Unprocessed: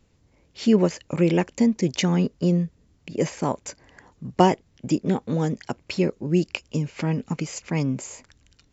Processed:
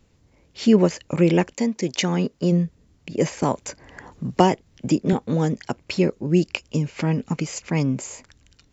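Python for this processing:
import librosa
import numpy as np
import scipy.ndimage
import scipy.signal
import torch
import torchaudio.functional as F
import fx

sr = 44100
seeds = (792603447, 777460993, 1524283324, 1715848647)

y = fx.highpass(x, sr, hz=fx.line((1.53, 490.0), (2.51, 160.0)), slope=6, at=(1.53, 2.51), fade=0.02)
y = fx.band_squash(y, sr, depth_pct=40, at=(3.42, 5.13))
y = y * librosa.db_to_amplitude(2.5)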